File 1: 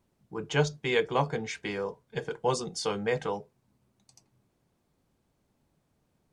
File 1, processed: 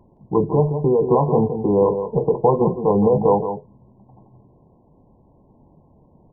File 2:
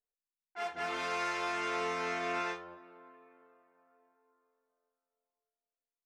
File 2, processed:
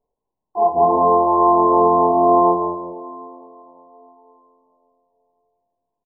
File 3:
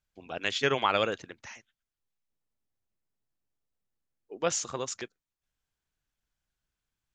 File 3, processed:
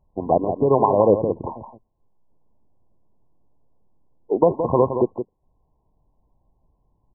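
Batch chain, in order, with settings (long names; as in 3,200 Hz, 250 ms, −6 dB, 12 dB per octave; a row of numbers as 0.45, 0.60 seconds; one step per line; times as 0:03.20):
downward compressor, threshold −28 dBFS
brickwall limiter −25 dBFS
linear-phase brick-wall low-pass 1,100 Hz
on a send: single-tap delay 169 ms −8.5 dB
on the sum: normalise the peak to −3 dBFS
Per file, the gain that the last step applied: +19.5, +23.0, +22.5 decibels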